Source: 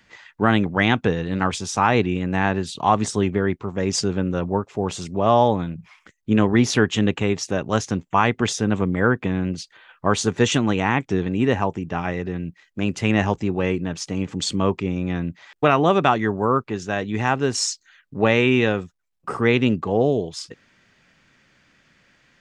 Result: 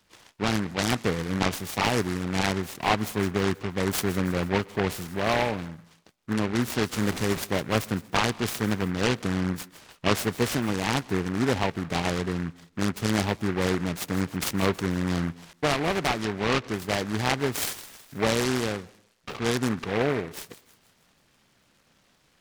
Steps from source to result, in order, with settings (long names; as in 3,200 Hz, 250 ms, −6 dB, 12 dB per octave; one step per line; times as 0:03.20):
0:06.96–0:07.43: linear delta modulator 32 kbit/s, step −22.5 dBFS
speech leveller within 4 dB 0.5 s
delay with a high-pass on its return 160 ms, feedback 51%, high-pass 4,900 Hz, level −12 dB
on a send at −22.5 dB: convolution reverb RT60 0.70 s, pre-delay 116 ms
on the sum: short delay modulated by noise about 1,300 Hz, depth 0.15 ms
level −5.5 dB